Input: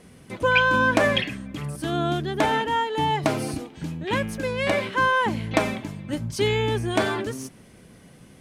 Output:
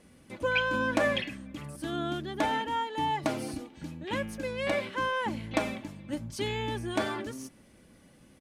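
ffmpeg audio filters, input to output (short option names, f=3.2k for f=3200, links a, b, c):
-af "aecho=1:1:3.5:0.36,volume=-8dB"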